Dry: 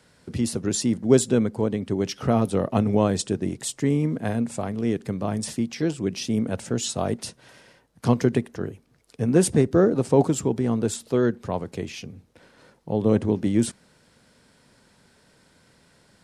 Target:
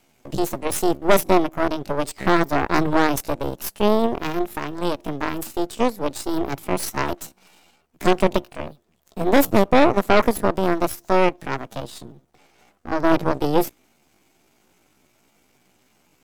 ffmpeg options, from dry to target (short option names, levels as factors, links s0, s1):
-af "aeval=exprs='if(lt(val(0),0),0.251*val(0),val(0))':c=same,asetrate=66075,aresample=44100,atempo=0.66742,aeval=exprs='0.531*(cos(1*acos(clip(val(0)/0.531,-1,1)))-cos(1*PI/2))+0.188*(cos(6*acos(clip(val(0)/0.531,-1,1)))-cos(6*PI/2))':c=same"